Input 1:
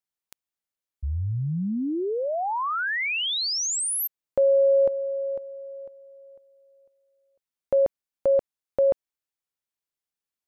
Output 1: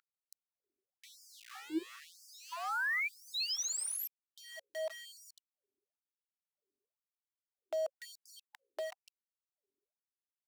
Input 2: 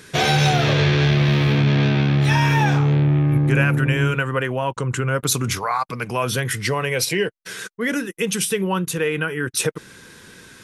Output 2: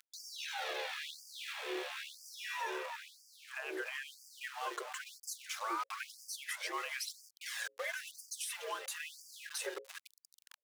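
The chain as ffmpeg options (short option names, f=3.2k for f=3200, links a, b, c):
-filter_complex "[0:a]acompressor=threshold=-20dB:ratio=6:attack=0.15:release=164:knee=1:detection=rms,flanger=delay=0.1:depth=4.4:regen=-2:speed=0.28:shape=triangular,afreqshift=87,equalizer=f=620:t=o:w=0.76:g=-7,asplit=2[a][b];[b]adelay=290,highpass=300,lowpass=3.4k,asoftclip=type=hard:threshold=-27dB,volume=-8dB[c];[a][c]amix=inputs=2:normalize=0,aeval=exprs='val(0)*gte(abs(val(0)),0.0133)':c=same,aeval=exprs='val(0)+0.00562*(sin(2*PI*50*n/s)+sin(2*PI*2*50*n/s)/2+sin(2*PI*3*50*n/s)/3+sin(2*PI*4*50*n/s)/4+sin(2*PI*5*50*n/s)/5)':c=same,acrossover=split=270[d][e];[e]acompressor=threshold=-55dB:ratio=2:attack=0.34:release=525:knee=2.83:detection=peak[f];[d][f]amix=inputs=2:normalize=0,highshelf=f=9.7k:g=-5.5,bandreject=f=60:t=h:w=6,bandreject=f=120:t=h:w=6,bandreject=f=180:t=h:w=6,bandreject=f=240:t=h:w=6,bandreject=f=300:t=h:w=6,bandreject=f=360:t=h:w=6,bandreject=f=420:t=h:w=6,bandreject=f=480:t=h:w=6,bandreject=f=540:t=h:w=6,afftfilt=real='re*gte(b*sr/1024,330*pow(4700/330,0.5+0.5*sin(2*PI*1*pts/sr)))':imag='im*gte(b*sr/1024,330*pow(4700/330,0.5+0.5*sin(2*PI*1*pts/sr)))':win_size=1024:overlap=0.75,volume=10dB"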